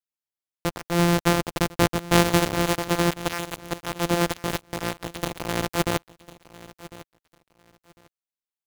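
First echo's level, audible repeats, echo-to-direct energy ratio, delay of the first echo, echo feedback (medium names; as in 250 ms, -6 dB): -18.5 dB, 2, -18.5 dB, 1051 ms, 22%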